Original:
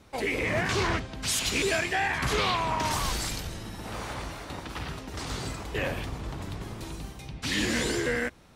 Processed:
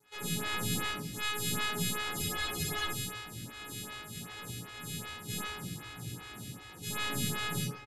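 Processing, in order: sorted samples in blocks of 64 samples; high-pass 190 Hz 24 dB/octave; peaking EQ 860 Hz -15 dB 2.9 oct; in parallel at -6.5 dB: hard clipper -32 dBFS, distortion -4 dB; on the sum: pitch shift -10 st; doubling 19 ms -6 dB; simulated room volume 520 m³, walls mixed, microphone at 4.2 m; speed mistake 44.1 kHz file played as 48 kHz; spectral freeze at 2.16 s, 0.77 s; lamp-driven phase shifter 2.6 Hz; trim -7 dB

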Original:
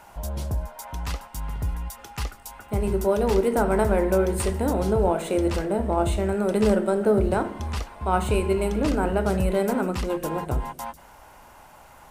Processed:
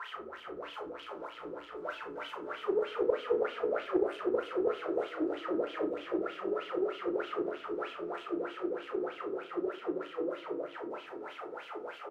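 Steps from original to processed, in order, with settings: one-bit comparator; Doppler pass-by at 4.27 s, 24 m/s, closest 16 m; in parallel at +2.5 dB: compression, threshold -42 dBFS, peak gain reduction 16 dB; on the sum: peak limiter -29 dBFS, peak gain reduction 10.5 dB; small resonant body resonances 440/1300 Hz, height 17 dB, ringing for 30 ms; wah-wah 3.2 Hz 290–3200 Hz, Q 12; doubling 35 ms -6 dB; on a send: feedback delay 326 ms, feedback 46%, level -6 dB; on the sum: simulated room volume 200 m³, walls furnished, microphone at 0.84 m; loudspeaker Doppler distortion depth 0.14 ms

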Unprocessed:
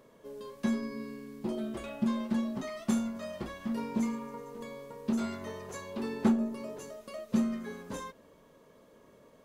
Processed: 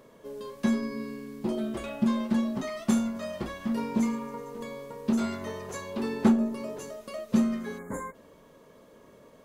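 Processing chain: time-frequency box 7.79–8.15 s, 2.3–6.5 kHz -27 dB; trim +4.5 dB

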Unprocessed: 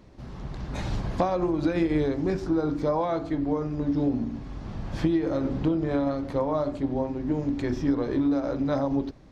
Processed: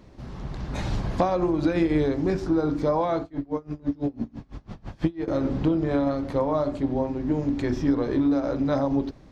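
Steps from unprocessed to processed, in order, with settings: 3.22–5.28 s: logarithmic tremolo 6 Hz, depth 27 dB; trim +2 dB

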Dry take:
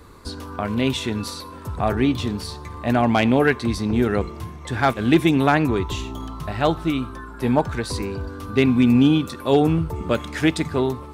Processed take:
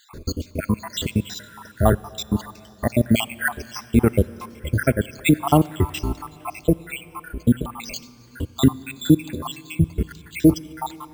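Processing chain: random holes in the spectrogram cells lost 83%; bass shelf 210 Hz +5.5 dB; in parallel at -2.5 dB: compression, threshold -32 dBFS, peak gain reduction 18 dB; on the sum: sample-and-hold 4×; plate-style reverb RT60 3.7 s, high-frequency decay 0.95×, DRR 18.5 dB; trim +3 dB

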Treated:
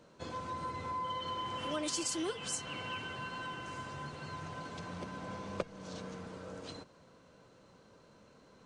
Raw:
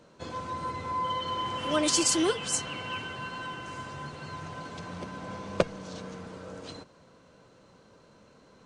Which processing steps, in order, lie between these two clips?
compression 2.5:1, threshold -33 dBFS, peak gain reduction 10.5 dB; trim -3.5 dB

